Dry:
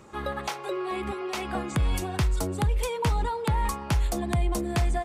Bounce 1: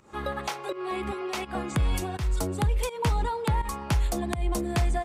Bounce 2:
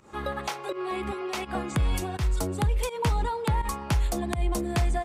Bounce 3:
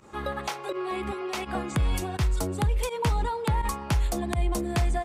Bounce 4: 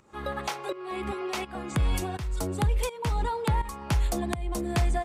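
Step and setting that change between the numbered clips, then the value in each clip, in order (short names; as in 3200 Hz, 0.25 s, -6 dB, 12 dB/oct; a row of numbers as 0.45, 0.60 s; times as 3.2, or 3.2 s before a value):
pump, release: 200, 127, 63, 503 ms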